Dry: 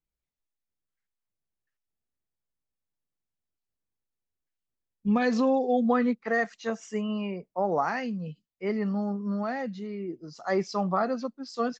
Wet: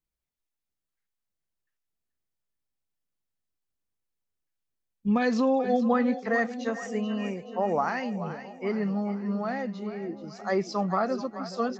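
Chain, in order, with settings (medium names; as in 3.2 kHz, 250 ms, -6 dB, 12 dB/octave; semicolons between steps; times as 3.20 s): two-band feedback delay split 590 Hz, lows 586 ms, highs 431 ms, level -12 dB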